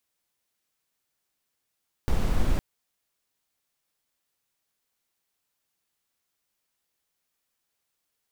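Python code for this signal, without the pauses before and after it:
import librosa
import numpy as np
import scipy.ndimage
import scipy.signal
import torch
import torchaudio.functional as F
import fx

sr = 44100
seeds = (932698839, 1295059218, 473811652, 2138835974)

y = fx.noise_colour(sr, seeds[0], length_s=0.51, colour='brown', level_db=-21.5)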